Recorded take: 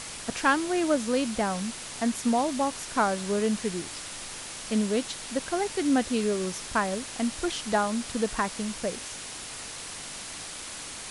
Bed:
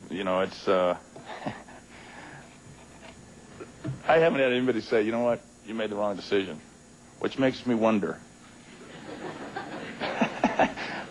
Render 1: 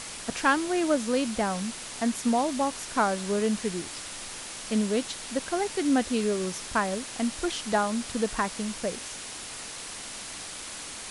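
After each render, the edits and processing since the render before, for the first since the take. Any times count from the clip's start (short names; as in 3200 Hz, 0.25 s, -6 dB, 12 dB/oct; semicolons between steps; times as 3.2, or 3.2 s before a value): de-hum 50 Hz, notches 3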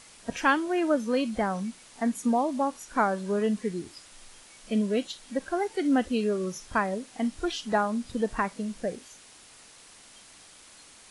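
noise print and reduce 13 dB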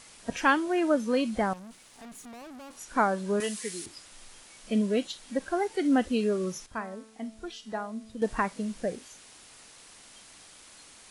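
1.53–2.77 tube stage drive 44 dB, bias 0.6; 3.4–3.86 tilt +4.5 dB/oct; 6.66–8.22 resonator 220 Hz, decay 0.81 s, mix 70%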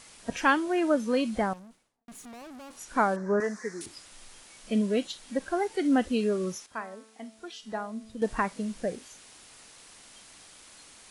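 1.37–2.08 studio fade out; 3.16–3.81 EQ curve 210 Hz 0 dB, 1800 Hz +7 dB, 2900 Hz -27 dB, 5800 Hz -4 dB, 10000 Hz -21 dB; 6.55–7.63 HPF 410 Hz 6 dB/oct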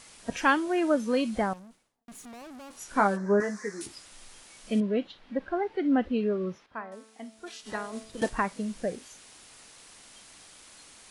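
2.78–3.95 doubler 15 ms -6 dB; 4.8–6.92 air absorption 340 m; 7.46–8.29 spectral limiter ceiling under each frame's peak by 16 dB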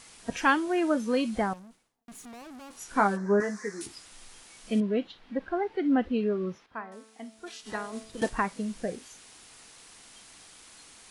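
notch 580 Hz, Q 12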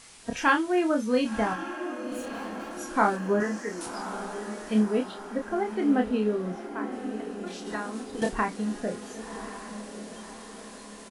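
doubler 28 ms -5 dB; on a send: diffused feedback echo 1.085 s, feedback 56%, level -10 dB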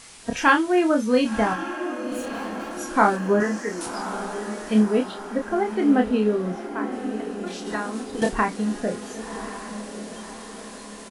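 gain +5 dB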